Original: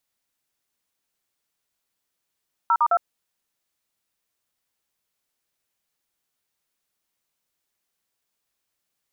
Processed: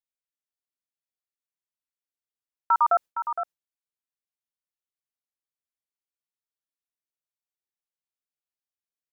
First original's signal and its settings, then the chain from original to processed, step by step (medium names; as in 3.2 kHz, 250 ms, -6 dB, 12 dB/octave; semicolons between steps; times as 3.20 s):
DTMF "0*2", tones 59 ms, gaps 47 ms, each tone -18 dBFS
gate with hold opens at -19 dBFS; delay 463 ms -9 dB